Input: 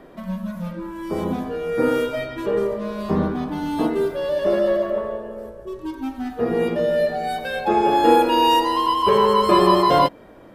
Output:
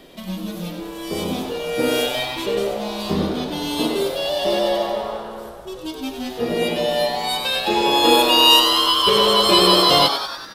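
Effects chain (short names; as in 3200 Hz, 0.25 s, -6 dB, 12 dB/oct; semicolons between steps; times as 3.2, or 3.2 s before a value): resonant high shelf 2200 Hz +13 dB, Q 1.5; frequency-shifting echo 96 ms, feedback 60%, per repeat +130 Hz, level -8.5 dB; gain -1 dB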